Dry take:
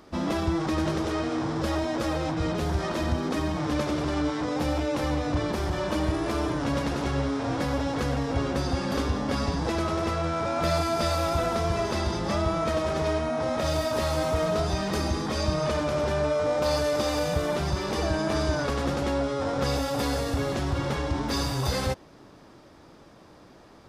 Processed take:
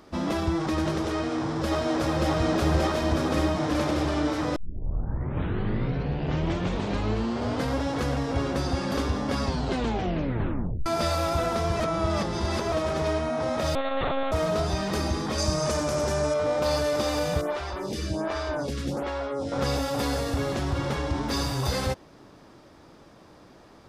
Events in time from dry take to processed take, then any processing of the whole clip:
1.13–2.29 s: echo throw 580 ms, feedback 80%, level -0.5 dB
4.56 s: tape start 3.27 s
9.43 s: tape stop 1.43 s
11.80–12.72 s: reverse
13.75–14.32 s: monotone LPC vocoder at 8 kHz 270 Hz
15.38–16.34 s: resonant high shelf 4.7 kHz +8 dB, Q 1.5
17.41–19.52 s: lamp-driven phase shifter 1.3 Hz

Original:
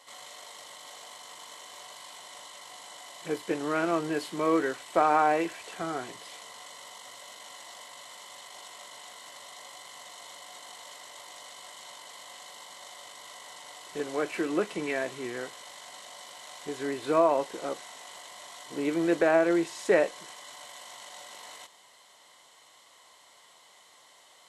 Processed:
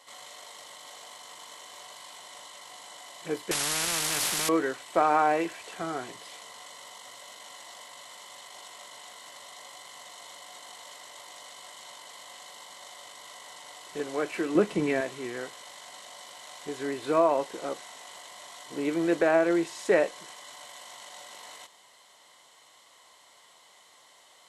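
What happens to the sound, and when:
3.51–4.49 s: spectrum-flattening compressor 10:1
14.55–15.01 s: bass shelf 350 Hz +12 dB

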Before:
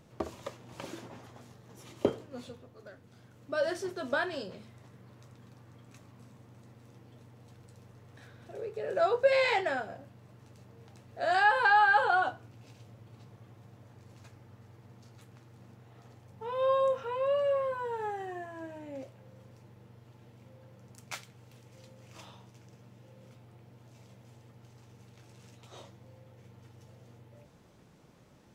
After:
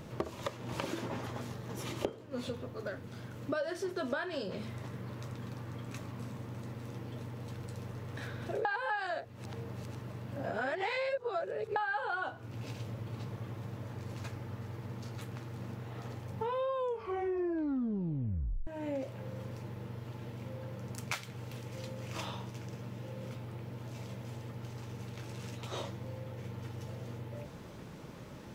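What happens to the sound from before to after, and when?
8.65–11.76 s: reverse
16.72 s: tape stop 1.95 s
whole clip: peaking EQ 7.8 kHz -4 dB 1.4 oct; band-stop 730 Hz, Q 12; compression 8:1, threshold -45 dBFS; trim +12 dB

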